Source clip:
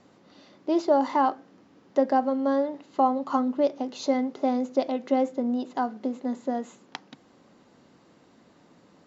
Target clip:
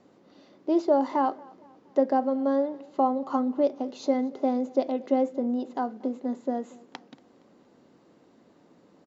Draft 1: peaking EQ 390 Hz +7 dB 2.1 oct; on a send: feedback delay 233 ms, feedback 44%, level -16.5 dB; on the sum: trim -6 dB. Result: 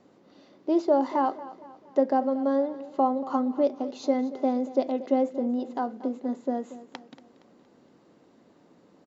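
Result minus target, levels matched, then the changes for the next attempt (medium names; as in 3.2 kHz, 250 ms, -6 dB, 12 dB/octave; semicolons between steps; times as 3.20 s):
echo-to-direct +7.5 dB
change: feedback delay 233 ms, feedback 44%, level -24 dB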